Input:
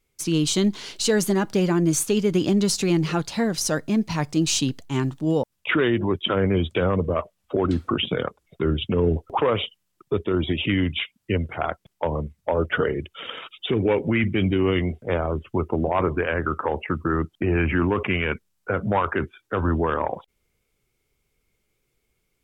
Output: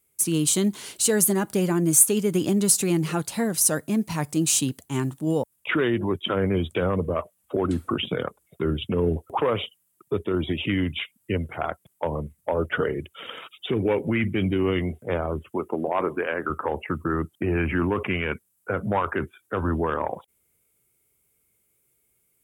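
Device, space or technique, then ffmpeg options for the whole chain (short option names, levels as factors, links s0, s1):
budget condenser microphone: -filter_complex "[0:a]highpass=72,highshelf=f=7100:t=q:w=1.5:g=12.5,asettb=1/sr,asplit=3[s0][s1][s2];[s0]atrim=end=15.504[s3];[s1]atrim=start=15.5:end=16.5,asetpts=PTS-STARTPTS,afade=t=in:d=0.004:c=qsin,afade=t=out:st=0.996:d=0.004:c=qsin,highpass=230[s4];[s2]atrim=start=16.496[s5];[s3][s4]acrossfade=d=0.004:c1=hsin:c2=qsin[s6];[s6][s5]acrossfade=d=0.004:c1=qsin:c2=hsin,volume=0.794"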